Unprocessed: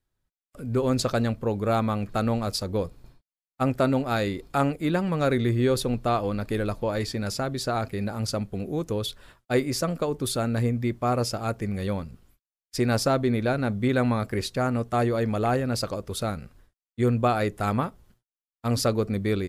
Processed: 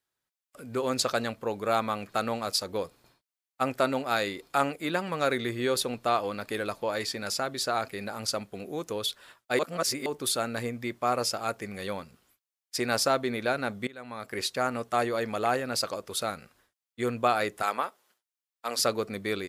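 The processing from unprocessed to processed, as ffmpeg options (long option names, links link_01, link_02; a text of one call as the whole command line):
ffmpeg -i in.wav -filter_complex "[0:a]asettb=1/sr,asplit=3[link_01][link_02][link_03];[link_01]atrim=end=17.624[link_04];[link_02]atrim=start=17.62:end=18.79,asetpts=PTS-STARTPTS,afade=type=in:duration=0.004:curve=qsin,afade=type=out:start_time=1.166:duration=0.004:curve=qsin,highpass=400[link_05];[link_03]atrim=start=18.786[link_06];[link_04][link_05]acrossfade=duration=0.004:curve1=hsin:curve2=qsin[link_07];[link_07][link_06]acrossfade=duration=0.004:curve1=qsin:curve2=hsin,asplit=4[link_08][link_09][link_10][link_11];[link_08]atrim=end=9.592[link_12];[link_09]atrim=start=9.588:end=10.062,asetpts=PTS-STARTPTS,areverse[link_13];[link_10]atrim=start=10.058:end=13.87,asetpts=PTS-STARTPTS,afade=type=out:start_time=3.808:duration=0.004:curve=hsin:silence=0.1[link_14];[link_11]atrim=start=13.87,asetpts=PTS-STARTPTS,afade=type=in:duration=0.54:curve=qua:silence=0.1[link_15];[link_12][link_13]acrossfade=duration=0.004:curve1=hsin:curve2=hsin[link_16];[link_14][link_15]concat=n=2:v=0:a=1[link_17];[link_16][link_17]acrossfade=duration=0.004:curve1=hsin:curve2=hsin,highpass=frequency=840:poles=1,volume=2.5dB" out.wav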